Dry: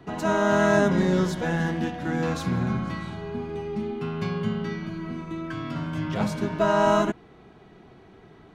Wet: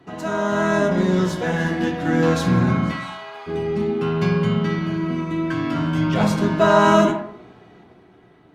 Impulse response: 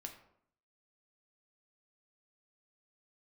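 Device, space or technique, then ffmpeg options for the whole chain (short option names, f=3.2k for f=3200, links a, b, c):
far-field microphone of a smart speaker: -filter_complex "[0:a]asplit=3[a][b][c];[a]afade=t=out:st=2.91:d=0.02[d];[b]highpass=f=690:w=0.5412,highpass=f=690:w=1.3066,afade=t=in:st=2.91:d=0.02,afade=t=out:st=3.46:d=0.02[e];[c]afade=t=in:st=3.46:d=0.02[f];[d][e][f]amix=inputs=3:normalize=0[g];[1:a]atrim=start_sample=2205[h];[g][h]afir=irnorm=-1:irlink=0,highpass=f=120:p=1,dynaudnorm=f=310:g=9:m=8.5dB,volume=4dB" -ar 48000 -c:a libopus -b:a 48k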